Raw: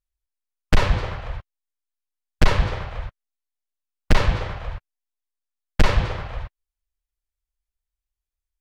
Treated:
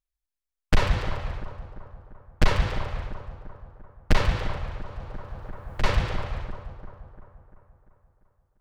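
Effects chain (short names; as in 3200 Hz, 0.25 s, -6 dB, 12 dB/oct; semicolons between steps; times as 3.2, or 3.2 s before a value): split-band echo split 1400 Hz, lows 0.345 s, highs 0.142 s, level -11 dB; 4.56–5.83 three-band squash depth 100%; gain -3.5 dB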